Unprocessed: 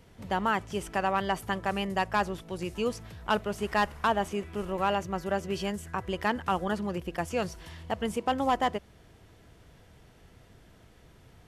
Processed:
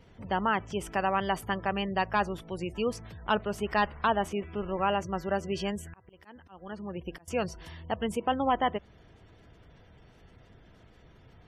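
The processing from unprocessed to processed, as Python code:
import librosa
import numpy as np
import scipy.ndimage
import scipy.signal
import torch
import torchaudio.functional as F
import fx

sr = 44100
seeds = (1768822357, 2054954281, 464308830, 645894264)

y = fx.auto_swell(x, sr, attack_ms=776.0, at=(5.71, 7.28))
y = fx.spec_gate(y, sr, threshold_db=-30, keep='strong')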